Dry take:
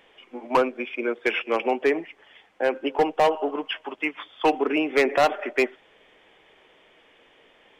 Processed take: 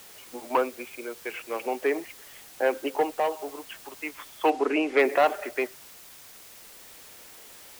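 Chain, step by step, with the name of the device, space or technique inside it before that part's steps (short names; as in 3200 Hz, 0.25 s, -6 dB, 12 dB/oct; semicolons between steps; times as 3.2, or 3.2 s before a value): shortwave radio (BPF 260–2900 Hz; tremolo 0.41 Hz, depth 70%; white noise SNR 19 dB); 4.5–4.99 LPF 7100 Hz 12 dB/oct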